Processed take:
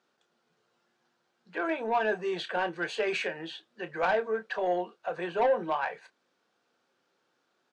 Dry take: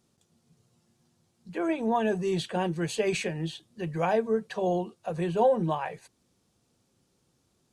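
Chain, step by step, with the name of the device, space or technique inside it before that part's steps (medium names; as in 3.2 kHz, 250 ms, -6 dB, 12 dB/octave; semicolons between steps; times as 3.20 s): intercom (band-pass 480–3500 Hz; peaking EQ 1.5 kHz +8.5 dB 0.38 oct; saturation -21.5 dBFS, distortion -15 dB; doubling 28 ms -11 dB); trim +2 dB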